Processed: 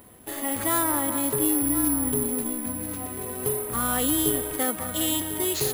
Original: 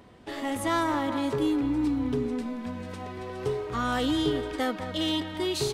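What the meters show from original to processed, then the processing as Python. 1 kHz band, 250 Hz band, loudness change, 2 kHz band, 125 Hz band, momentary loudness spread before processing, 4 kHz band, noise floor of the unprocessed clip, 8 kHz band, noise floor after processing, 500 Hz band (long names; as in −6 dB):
0.0 dB, 0.0 dB, +4.5 dB, 0.0 dB, 0.0 dB, 10 LU, −0.5 dB, −40 dBFS, +19.0 dB, −37 dBFS, 0.0 dB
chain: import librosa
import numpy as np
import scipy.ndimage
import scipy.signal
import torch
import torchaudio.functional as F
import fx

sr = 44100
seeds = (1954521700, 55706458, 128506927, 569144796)

y = (np.kron(x[::4], np.eye(4)[0]) * 4)[:len(x)]
y = fx.high_shelf(y, sr, hz=9800.0, db=-9.0)
y = y + 10.0 ** (-12.5 / 20.0) * np.pad(y, (int(1047 * sr / 1000.0), 0))[:len(y)]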